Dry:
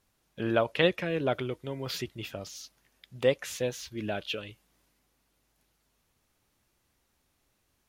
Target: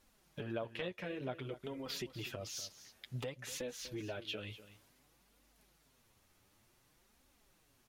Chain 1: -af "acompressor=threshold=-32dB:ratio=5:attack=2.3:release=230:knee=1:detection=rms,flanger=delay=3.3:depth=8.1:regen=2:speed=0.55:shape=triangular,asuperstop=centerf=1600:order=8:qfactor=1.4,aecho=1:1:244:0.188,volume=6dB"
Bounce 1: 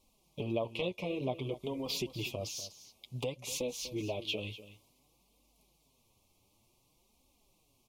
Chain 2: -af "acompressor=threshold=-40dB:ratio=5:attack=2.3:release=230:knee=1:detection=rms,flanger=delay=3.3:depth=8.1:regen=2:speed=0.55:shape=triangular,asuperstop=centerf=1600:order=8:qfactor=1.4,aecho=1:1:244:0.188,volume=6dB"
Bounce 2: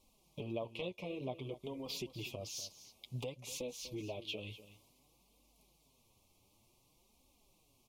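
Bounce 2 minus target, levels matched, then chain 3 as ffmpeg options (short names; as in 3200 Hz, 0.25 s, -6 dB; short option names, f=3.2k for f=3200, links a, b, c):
2000 Hz band -3.5 dB
-af "acompressor=threshold=-40dB:ratio=5:attack=2.3:release=230:knee=1:detection=rms,flanger=delay=3.3:depth=8.1:regen=2:speed=0.55:shape=triangular,aecho=1:1:244:0.188,volume=6dB"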